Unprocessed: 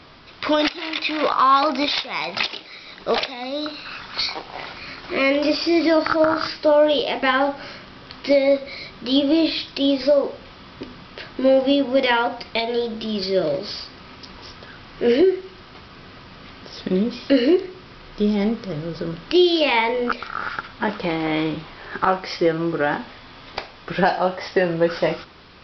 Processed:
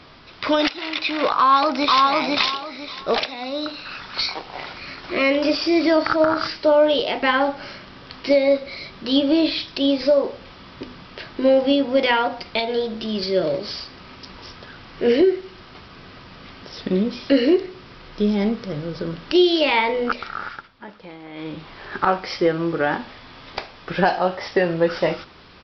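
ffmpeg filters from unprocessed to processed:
ffmpeg -i in.wav -filter_complex "[0:a]asplit=2[link_01][link_02];[link_02]afade=type=in:start_time=1.37:duration=0.01,afade=type=out:start_time=2.03:duration=0.01,aecho=0:1:500|1000|1500|2000:0.841395|0.210349|0.0525872|0.0131468[link_03];[link_01][link_03]amix=inputs=2:normalize=0,asplit=3[link_04][link_05][link_06];[link_04]atrim=end=20.71,asetpts=PTS-STARTPTS,afade=type=out:start_time=20.27:duration=0.44:silence=0.158489[link_07];[link_05]atrim=start=20.71:end=21.34,asetpts=PTS-STARTPTS,volume=-16dB[link_08];[link_06]atrim=start=21.34,asetpts=PTS-STARTPTS,afade=type=in:duration=0.44:silence=0.158489[link_09];[link_07][link_08][link_09]concat=n=3:v=0:a=1" out.wav

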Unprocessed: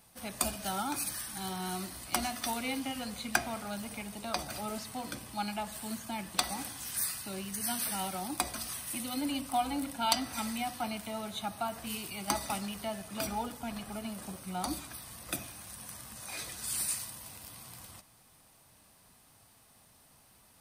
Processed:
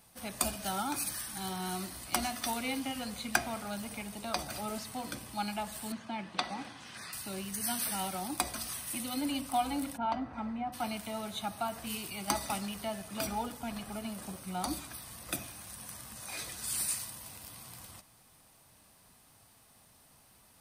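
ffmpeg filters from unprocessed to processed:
ffmpeg -i in.wav -filter_complex "[0:a]asettb=1/sr,asplit=3[link_01][link_02][link_03];[link_01]atrim=end=5.924[link_04];[link_02]atrim=start=5.92:end=7.13,asetpts=PTS-STARTPTS,afade=type=in:duration=0.004:curve=qsin,afade=type=out:start_time=1.206:duration=0.004:curve=qsin,highpass=130,lowpass=3500[link_05];[link_03]atrim=start=7.126[link_06];[link_04][link_05]acrossfade=duration=0.004:curve1=hsin:curve2=qsin[link_07];[link_07][link_06]acrossfade=duration=0.004:curve1=qsin:curve2=hsin,asplit=3[link_08][link_09][link_10];[link_08]afade=type=out:start_time=9.96:duration=0.02[link_11];[link_09]lowpass=1200,afade=type=in:start_time=9.96:duration=0.02,afade=type=out:start_time=10.72:duration=0.02[link_12];[link_10]afade=type=in:start_time=10.72:duration=0.02[link_13];[link_11][link_12][link_13]amix=inputs=3:normalize=0" out.wav

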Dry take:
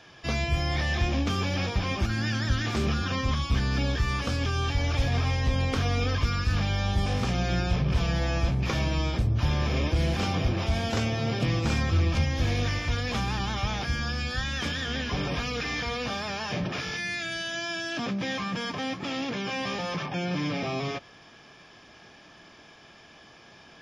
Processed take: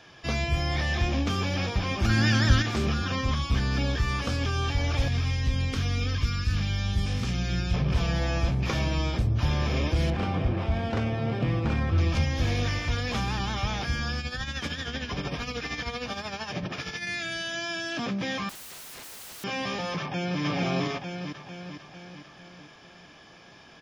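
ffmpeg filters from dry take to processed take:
ffmpeg -i in.wav -filter_complex "[0:a]asplit=3[link_01][link_02][link_03];[link_01]afade=type=out:start_time=2.04:duration=0.02[link_04];[link_02]acontrast=55,afade=type=in:start_time=2.04:duration=0.02,afade=type=out:start_time=2.61:duration=0.02[link_05];[link_03]afade=type=in:start_time=2.61:duration=0.02[link_06];[link_04][link_05][link_06]amix=inputs=3:normalize=0,asettb=1/sr,asplit=3[link_07][link_08][link_09];[link_07]atrim=end=5.084[link_10];[link_08]atrim=start=5.08:end=7.74,asetpts=PTS-STARTPTS,afade=type=in:duration=0.004:curve=qsin,afade=type=out:start_time=2.656:duration=0.004:curve=qsin,equalizer=frequency=710:width_type=o:width=1.9:gain=-10.5[link_11];[link_09]atrim=start=7.736[link_12];[link_10][link_11]acrossfade=duration=0.004:curve1=hsin:curve2=qsin[link_13];[link_13][link_12]acrossfade=duration=0.004:curve1=qsin:curve2=hsin,asettb=1/sr,asplit=3[link_14][link_15][link_16];[link_14]atrim=end=10.104[link_17];[link_15]atrim=start=10.1:end=11.98,asetpts=PTS-STARTPTS,afade=type=in:duration=0.004:curve=qsin,afade=type=out:start_time=1.876:duration=0.004:curve=qsin,adynamicsmooth=sensitivity=1:basefreq=2300[link_18];[link_16]atrim=start=11.976[link_19];[link_17][link_18]acrossfade=duration=0.004:curve1=hsin:curve2=qsin[link_20];[link_20][link_19]acrossfade=duration=0.004:curve1=qsin:curve2=hsin,asettb=1/sr,asplit=3[link_21][link_22][link_23];[link_21]atrim=end=14.194[link_24];[link_22]atrim=start=14.19:end=17.07,asetpts=PTS-STARTPTS,afade=type=in:duration=0.004:curve=qsin,afade=type=out:start_time=2.876:duration=0.004:curve=qsin,tremolo=f=13:d=0.6[link_25];[link_23]atrim=start=17.066[link_26];[link_24][link_25]acrossfade=duration=0.004:curve1=hsin:curve2=qsin[link_27];[link_27][link_26]acrossfade=duration=0.004:curve1=qsin:curve2=hsin,asettb=1/sr,asplit=3[link_28][link_29][link_30];[link_28]atrim=end=18.494[link_31];[link_29]atrim=start=18.49:end=19.44,asetpts=PTS-STARTPTS,afade=type=in:duration=0.004:curve=qsin,afade=type=out:start_time=0.946:duration=0.004:curve=qsin,aeval=exprs='(mod(84.1*val(0)+1,2)-1)/84.1':channel_layout=same[link_32];[link_30]atrim=start=19.436[link_33];[link_31][link_32]acrossfade=duration=0.004:curve1=hsin:curve2=qsin[link_34];[link_34][link_33]acrossfade=duration=0.004:curve1=qsin:curve2=hsin,asplit=2[link_35][link_36];[link_36]afade=type=in:start_time=19.99:duration=0.01,afade=type=out:start_time=20.42:duration=0.01,aecho=0:1:450|900|1350|1800|2250|2700|3150|3600:0.944061|0.519233|0.285578|0.157068|0.0863875|0.0475131|0.0261322|0.0143727[link_37];[link_35][link_37]amix=inputs=2:normalize=0" out.wav

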